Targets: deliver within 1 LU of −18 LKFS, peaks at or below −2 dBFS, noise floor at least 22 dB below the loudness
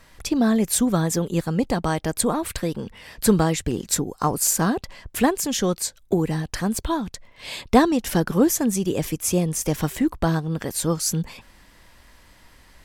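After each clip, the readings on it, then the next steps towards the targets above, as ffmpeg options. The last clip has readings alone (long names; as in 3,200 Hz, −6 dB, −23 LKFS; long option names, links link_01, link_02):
integrated loudness −22.5 LKFS; sample peak −2.5 dBFS; target loudness −18.0 LKFS
→ -af "volume=4.5dB,alimiter=limit=-2dB:level=0:latency=1"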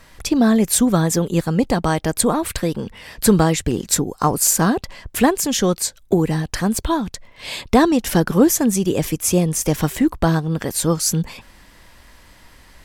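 integrated loudness −18.5 LKFS; sample peak −2.0 dBFS; background noise floor −49 dBFS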